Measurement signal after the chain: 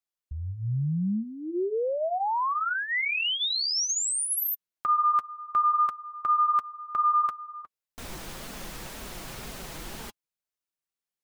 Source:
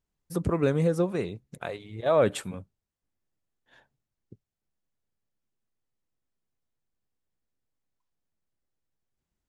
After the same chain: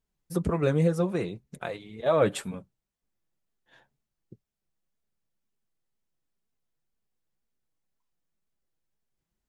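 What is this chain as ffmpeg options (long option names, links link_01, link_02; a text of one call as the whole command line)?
ffmpeg -i in.wav -af "flanger=delay=4.3:depth=2.1:regen=-33:speed=2:shape=triangular,volume=4dB" out.wav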